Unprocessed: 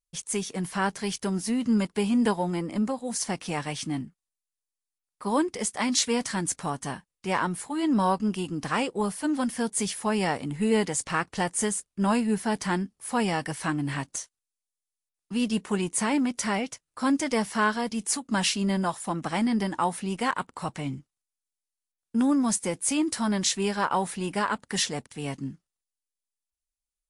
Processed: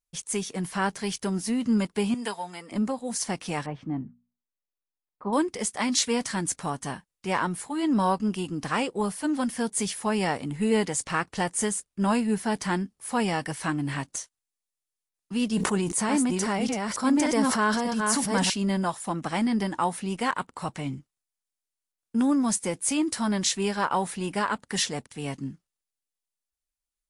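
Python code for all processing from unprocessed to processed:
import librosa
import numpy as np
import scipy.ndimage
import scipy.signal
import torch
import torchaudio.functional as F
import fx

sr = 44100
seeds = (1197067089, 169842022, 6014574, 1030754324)

y = fx.chain(x, sr, fx.highpass(hz=1400.0, slope=6),
    fx.comb(ms=4.4, depth=0.45), at=(2.14, 2.72))
y = fx.chain(y, sr, fx.lowpass(hz=1100.0, slope=12),
    fx.hum_notches(base_hz=60, count=4), at=(3.66, 5.33))
y = fx.chain(y, sr, fx.reverse_delay(ms=588, wet_db=-3.5),
    fx.peak_eq(hz=2500.0, db=-4.0, octaves=1.1),
    fx.sustainer(db_per_s=34.0), at=(15.5, 18.5))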